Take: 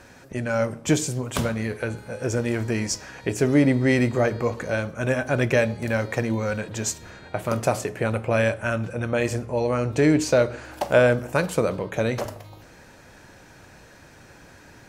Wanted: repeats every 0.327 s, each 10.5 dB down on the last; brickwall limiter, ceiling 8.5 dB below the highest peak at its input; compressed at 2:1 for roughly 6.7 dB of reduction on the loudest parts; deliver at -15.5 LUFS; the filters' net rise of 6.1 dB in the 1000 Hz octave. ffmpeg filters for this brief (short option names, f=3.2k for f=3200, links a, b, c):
-af "equalizer=f=1k:t=o:g=8.5,acompressor=threshold=-22dB:ratio=2,alimiter=limit=-15dB:level=0:latency=1,aecho=1:1:327|654|981:0.299|0.0896|0.0269,volume=12dB"